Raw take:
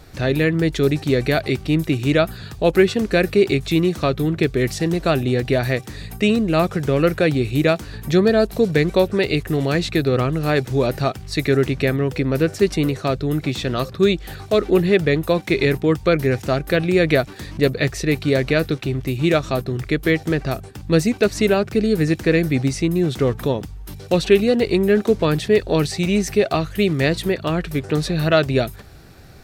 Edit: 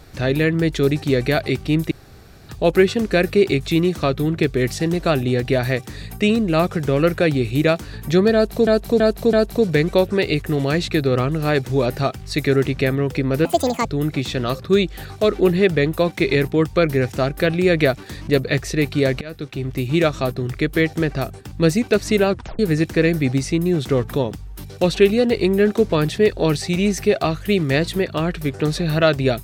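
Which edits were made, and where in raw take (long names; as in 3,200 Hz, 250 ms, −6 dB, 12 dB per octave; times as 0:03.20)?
0:01.91–0:02.49: fill with room tone
0:08.34–0:08.67: repeat, 4 plays
0:12.46–0:13.15: play speed 172%
0:18.51–0:19.09: fade in, from −23 dB
0:21.60: tape stop 0.29 s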